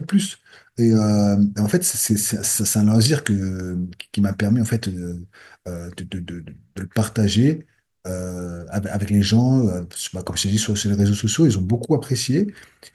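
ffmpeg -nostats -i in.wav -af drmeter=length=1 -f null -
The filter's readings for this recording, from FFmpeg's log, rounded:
Channel 1: DR: 10.4
Overall DR: 10.4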